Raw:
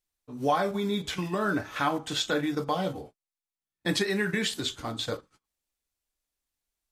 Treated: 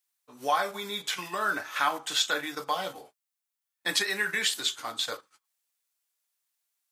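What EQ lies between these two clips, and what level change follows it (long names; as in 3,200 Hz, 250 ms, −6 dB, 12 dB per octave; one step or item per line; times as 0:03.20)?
high-pass filter 88 Hz
spectral tilt +4 dB per octave
parametric band 1,100 Hz +8.5 dB 2.7 octaves
−7.0 dB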